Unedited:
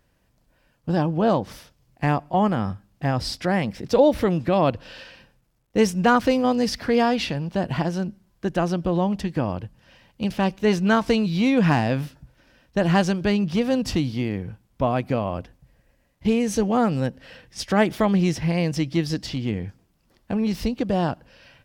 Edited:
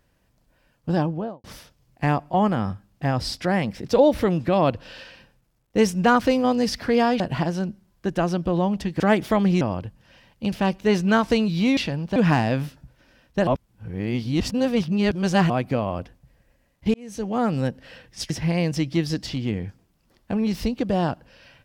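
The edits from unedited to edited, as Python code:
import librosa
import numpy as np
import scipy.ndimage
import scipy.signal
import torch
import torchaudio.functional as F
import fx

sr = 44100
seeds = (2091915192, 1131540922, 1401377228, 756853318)

y = fx.studio_fade_out(x, sr, start_s=0.95, length_s=0.49)
y = fx.edit(y, sr, fx.move(start_s=7.2, length_s=0.39, to_s=11.55),
    fx.reverse_span(start_s=12.86, length_s=2.03),
    fx.fade_in_span(start_s=16.33, length_s=0.64),
    fx.move(start_s=17.69, length_s=0.61, to_s=9.39), tone=tone)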